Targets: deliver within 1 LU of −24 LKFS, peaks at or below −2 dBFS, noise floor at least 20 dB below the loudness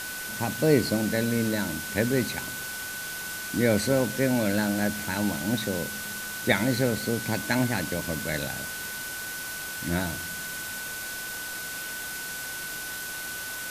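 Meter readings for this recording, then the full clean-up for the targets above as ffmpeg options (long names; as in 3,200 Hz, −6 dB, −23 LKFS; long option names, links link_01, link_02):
interfering tone 1,500 Hz; level of the tone −36 dBFS; background noise floor −35 dBFS; target noise floor −48 dBFS; integrated loudness −28.0 LKFS; sample peak −4.0 dBFS; target loudness −24.0 LKFS
→ -af "bandreject=frequency=1500:width=30"
-af "afftdn=noise_reduction=13:noise_floor=-35"
-af "volume=4dB,alimiter=limit=-2dB:level=0:latency=1"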